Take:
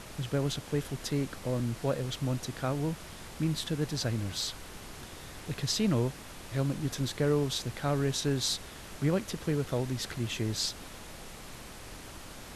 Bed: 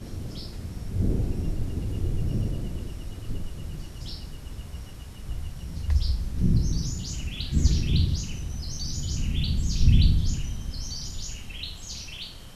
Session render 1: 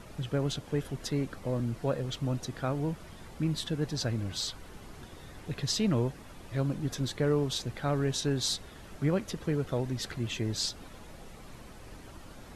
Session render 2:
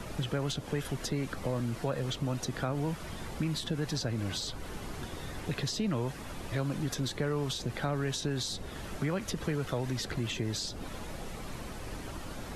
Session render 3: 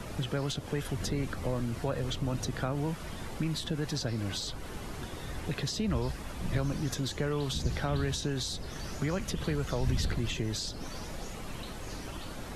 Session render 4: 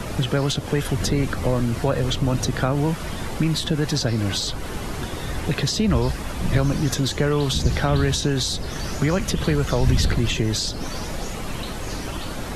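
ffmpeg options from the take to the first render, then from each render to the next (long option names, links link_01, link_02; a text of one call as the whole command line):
ffmpeg -i in.wav -af "afftdn=noise_reduction=9:noise_floor=-47" out.wav
ffmpeg -i in.wav -filter_complex "[0:a]asplit=2[link_01][link_02];[link_02]alimiter=level_in=4dB:limit=-24dB:level=0:latency=1,volume=-4dB,volume=2.5dB[link_03];[link_01][link_03]amix=inputs=2:normalize=0,acrossover=split=190|770[link_04][link_05][link_06];[link_04]acompressor=threshold=-36dB:ratio=4[link_07];[link_05]acompressor=threshold=-35dB:ratio=4[link_08];[link_06]acompressor=threshold=-36dB:ratio=4[link_09];[link_07][link_08][link_09]amix=inputs=3:normalize=0" out.wav
ffmpeg -i in.wav -i bed.wav -filter_complex "[1:a]volume=-13.5dB[link_01];[0:a][link_01]amix=inputs=2:normalize=0" out.wav
ffmpeg -i in.wav -af "volume=11dB" out.wav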